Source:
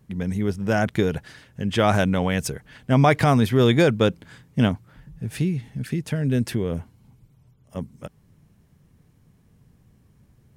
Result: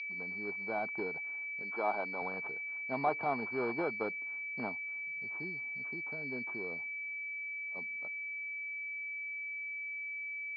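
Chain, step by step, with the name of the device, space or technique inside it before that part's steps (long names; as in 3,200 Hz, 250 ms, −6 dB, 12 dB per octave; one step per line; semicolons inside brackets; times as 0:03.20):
toy sound module (linearly interpolated sample-rate reduction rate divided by 4×; switching amplifier with a slow clock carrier 2,300 Hz; loudspeaker in its box 510–4,900 Hz, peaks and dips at 540 Hz −8 dB, 860 Hz +4 dB, 1,900 Hz −8 dB, 4,500 Hz +10 dB)
0:01.62–0:02.22: high-pass filter 240 Hz 12 dB per octave
level −8.5 dB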